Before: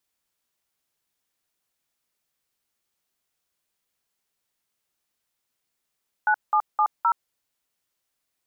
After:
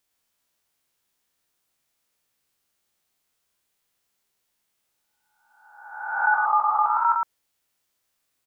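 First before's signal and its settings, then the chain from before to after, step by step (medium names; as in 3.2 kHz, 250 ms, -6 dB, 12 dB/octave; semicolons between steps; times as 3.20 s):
DTMF "9770", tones 73 ms, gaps 186 ms, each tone -19.5 dBFS
reverse spectral sustain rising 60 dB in 1.08 s; on a send: delay 111 ms -3.5 dB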